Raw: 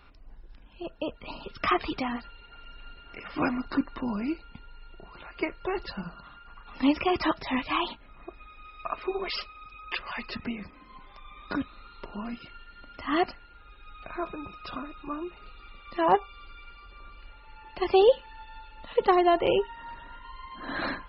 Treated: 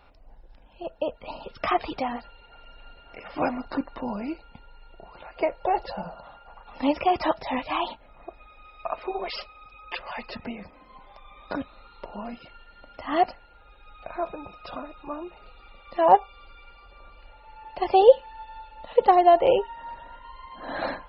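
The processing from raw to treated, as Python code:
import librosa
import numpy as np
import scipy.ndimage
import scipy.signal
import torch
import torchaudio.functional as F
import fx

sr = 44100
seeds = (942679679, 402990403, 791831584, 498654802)

y = fx.band_shelf(x, sr, hz=660.0, db=fx.steps((0.0, 9.0), (5.35, 16.0), (6.62, 9.5)), octaves=1.1)
y = y * 10.0 ** (-2.0 / 20.0)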